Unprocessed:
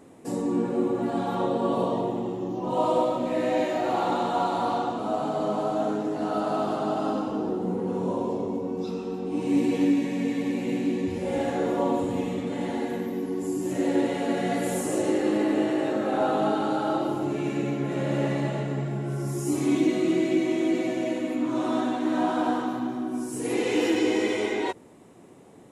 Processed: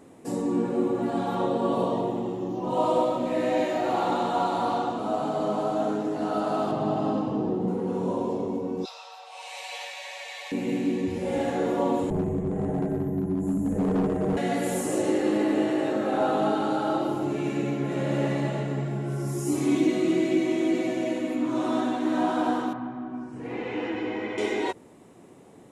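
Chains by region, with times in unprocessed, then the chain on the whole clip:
0:06.71–0:07.68: low-pass filter 3,500 Hz 6 dB per octave + parametric band 130 Hz +11 dB 0.78 octaves + notch filter 1,400 Hz, Q 6.2
0:08.85–0:10.52: Butterworth high-pass 580 Hz 72 dB per octave + parametric band 4,100 Hz +7.5 dB 1.2 octaves
0:12.10–0:14.37: drawn EQ curve 200 Hz 0 dB, 440 Hz +5 dB, 840 Hz +1 dB, 1,500 Hz −7 dB, 2,700 Hz −18 dB, 4,700 Hz −28 dB, 6,900 Hz −10 dB, 10,000 Hz −7 dB + frequency shifter −92 Hz + hard clipping −20.5 dBFS
0:22.73–0:24.38: low-pass filter 1,800 Hz + parametric band 380 Hz −9.5 dB 1.1 octaves
whole clip: no processing

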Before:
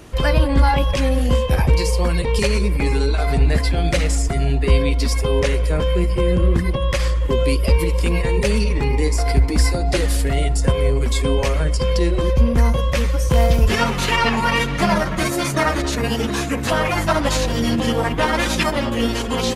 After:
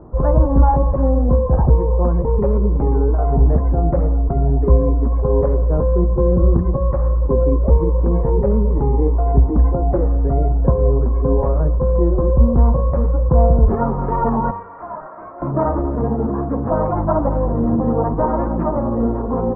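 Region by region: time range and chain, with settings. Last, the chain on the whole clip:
0:14.51–0:15.42: high-pass filter 1,100 Hz + hard clipping −26.5 dBFS + double-tracking delay 33 ms −4 dB
whole clip: Butterworth low-pass 1,100 Hz 36 dB per octave; hum removal 94.11 Hz, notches 13; level +2.5 dB

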